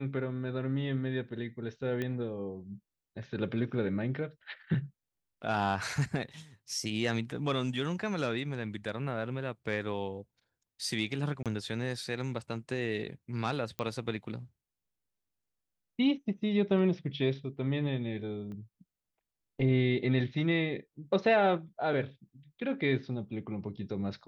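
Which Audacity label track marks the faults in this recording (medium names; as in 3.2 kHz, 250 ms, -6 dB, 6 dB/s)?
2.020000	2.020000	pop -22 dBFS
11.430000	11.460000	dropout 27 ms
13.790000	13.790000	pop -22 dBFS
18.520000	18.520000	pop -35 dBFS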